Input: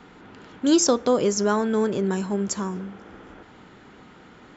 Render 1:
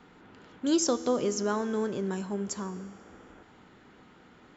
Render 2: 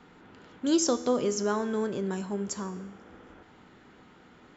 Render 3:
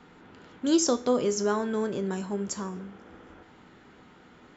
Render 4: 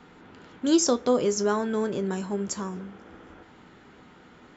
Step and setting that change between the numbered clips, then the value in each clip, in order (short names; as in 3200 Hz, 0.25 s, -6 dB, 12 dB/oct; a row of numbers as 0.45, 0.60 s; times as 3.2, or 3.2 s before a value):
resonator, decay: 2.1, 0.93, 0.39, 0.16 s